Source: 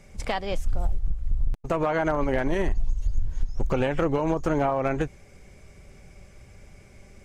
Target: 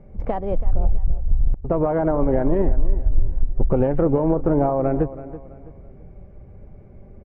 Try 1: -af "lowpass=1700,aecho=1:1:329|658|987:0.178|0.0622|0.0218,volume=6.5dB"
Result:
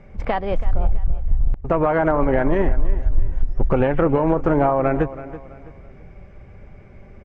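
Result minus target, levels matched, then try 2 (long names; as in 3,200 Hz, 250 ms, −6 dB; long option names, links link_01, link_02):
2,000 Hz band +11.5 dB
-af "lowpass=680,aecho=1:1:329|658|987:0.178|0.0622|0.0218,volume=6.5dB"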